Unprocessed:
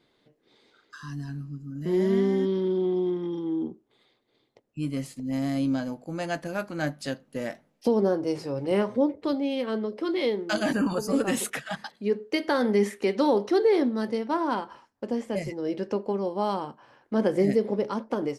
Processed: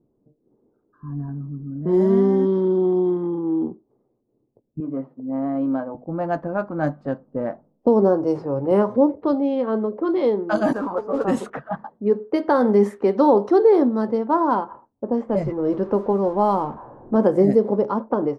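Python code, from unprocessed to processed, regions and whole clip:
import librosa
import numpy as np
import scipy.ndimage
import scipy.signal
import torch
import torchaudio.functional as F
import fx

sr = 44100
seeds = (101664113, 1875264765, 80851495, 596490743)

y = fx.chain(x, sr, fx.low_shelf(hz=110.0, db=-5.5),
    fx.env_flatten(amount_pct=50), at=(1.28, 1.85))
y = fx.chain(y, sr, fx.bandpass_edges(low_hz=260.0, high_hz=2400.0),
    fx.hum_notches(base_hz=50, count=7), at=(4.8, 5.95))
y = fx.chain(y, sr, fx.highpass(hz=430.0, slope=12),
    fx.high_shelf(hz=2200.0, db=-6.5),
    fx.mod_noise(seeds[0], snr_db=12), at=(10.73, 11.25))
y = fx.chain(y, sr, fx.zero_step(step_db=-41.0),
    fx.low_shelf(hz=110.0, db=5.5), at=(15.29, 17.16))
y = fx.env_lowpass(y, sr, base_hz=320.0, full_db=-21.0)
y = fx.high_shelf_res(y, sr, hz=1600.0, db=-12.0, q=1.5)
y = F.gain(torch.from_numpy(y), 6.0).numpy()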